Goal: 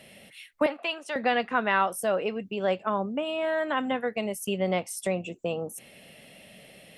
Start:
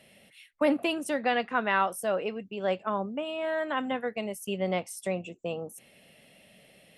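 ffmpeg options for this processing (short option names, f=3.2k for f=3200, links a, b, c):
-filter_complex "[0:a]asplit=2[a][b];[b]acompressor=threshold=-37dB:ratio=6,volume=1dB[c];[a][c]amix=inputs=2:normalize=0,asettb=1/sr,asplit=3[d][e][f];[d]atrim=end=0.664[g];[e]atrim=start=0.66:end=1.16,asetpts=PTS-STARTPTS,afade=t=in:d=0.004:c=qsin,afade=t=out:st=0.496:d=0.004:c=qsin,highpass=770,lowpass=4.7k[h];[f]atrim=start=1.156[i];[g][h]acrossfade=d=0.004:c1=hsin:c2=qsin[j];[j][i]acrossfade=d=0.004:c1=qsin:c2=hsin"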